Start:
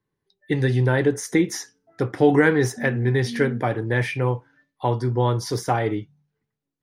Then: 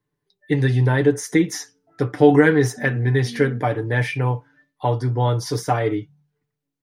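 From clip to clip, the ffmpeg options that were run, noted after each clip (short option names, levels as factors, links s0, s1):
-af "aecho=1:1:6.8:0.54"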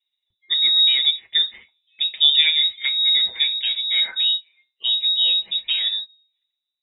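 -af "equalizer=f=100:t=o:w=0.67:g=4,equalizer=f=250:t=o:w=0.67:g=-4,equalizer=f=630:t=o:w=0.67:g=-9,equalizer=f=2500:t=o:w=0.67:g=-10,lowpass=f=3300:t=q:w=0.5098,lowpass=f=3300:t=q:w=0.6013,lowpass=f=3300:t=q:w=0.9,lowpass=f=3300:t=q:w=2.563,afreqshift=-3900"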